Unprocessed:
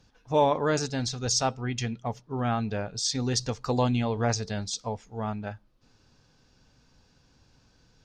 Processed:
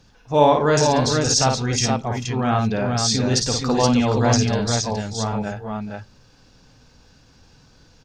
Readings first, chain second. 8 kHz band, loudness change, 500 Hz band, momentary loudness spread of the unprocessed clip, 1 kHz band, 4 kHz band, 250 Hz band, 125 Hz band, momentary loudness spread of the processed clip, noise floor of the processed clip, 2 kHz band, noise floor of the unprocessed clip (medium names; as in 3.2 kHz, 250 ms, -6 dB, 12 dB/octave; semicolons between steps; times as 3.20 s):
+9.0 dB, +9.0 dB, +9.0 dB, 10 LU, +9.0 dB, +9.0 dB, +9.5 dB, +9.0 dB, 11 LU, -54 dBFS, +9.0 dB, -64 dBFS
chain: transient shaper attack -3 dB, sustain +3 dB; multi-tap echo 54/439/472 ms -4.5/-13/-4 dB; trim +7 dB